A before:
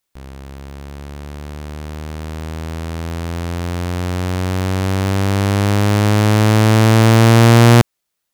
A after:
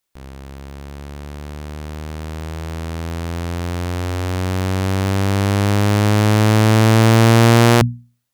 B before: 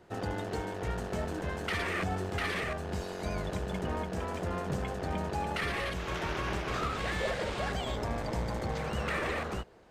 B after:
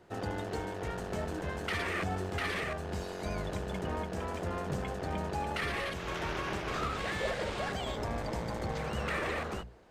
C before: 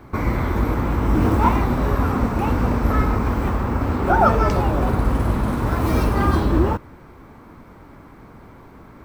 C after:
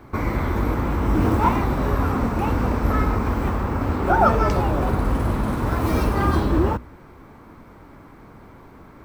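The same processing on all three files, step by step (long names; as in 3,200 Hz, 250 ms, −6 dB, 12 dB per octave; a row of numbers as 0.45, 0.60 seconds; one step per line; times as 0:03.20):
mains-hum notches 60/120/180/240 Hz
level −1 dB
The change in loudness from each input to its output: −1.5, −1.5, −1.5 LU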